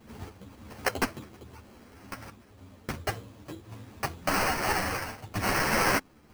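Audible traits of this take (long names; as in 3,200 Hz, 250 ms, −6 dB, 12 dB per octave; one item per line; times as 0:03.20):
aliases and images of a low sample rate 3,600 Hz, jitter 0%
sample-and-hold tremolo
a shimmering, thickened sound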